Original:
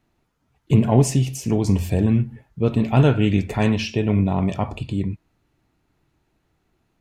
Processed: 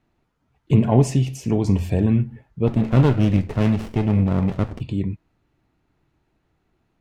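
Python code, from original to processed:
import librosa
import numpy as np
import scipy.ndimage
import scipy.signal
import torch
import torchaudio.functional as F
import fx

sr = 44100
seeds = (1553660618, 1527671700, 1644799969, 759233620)

y = fx.high_shelf(x, sr, hz=5600.0, db=-10.0)
y = fx.running_max(y, sr, window=33, at=(2.66, 4.8), fade=0.02)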